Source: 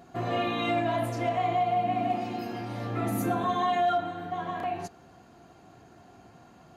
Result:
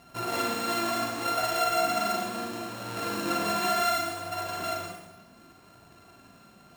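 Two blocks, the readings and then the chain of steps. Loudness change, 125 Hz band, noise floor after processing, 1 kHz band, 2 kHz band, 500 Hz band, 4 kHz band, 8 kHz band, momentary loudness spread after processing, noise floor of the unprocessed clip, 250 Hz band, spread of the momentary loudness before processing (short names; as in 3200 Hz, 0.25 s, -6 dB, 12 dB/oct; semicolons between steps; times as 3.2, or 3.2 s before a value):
+0.5 dB, -8.5 dB, -55 dBFS, -1.5 dB, +4.0 dB, -2.0 dB, +7.0 dB, +13.0 dB, 10 LU, -55 dBFS, -3.0 dB, 9 LU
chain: sample sorter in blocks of 32 samples; flange 0.69 Hz, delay 1 ms, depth 4.6 ms, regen +55%; Schroeder reverb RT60 0.94 s, combs from 32 ms, DRR 0 dB; gain +1 dB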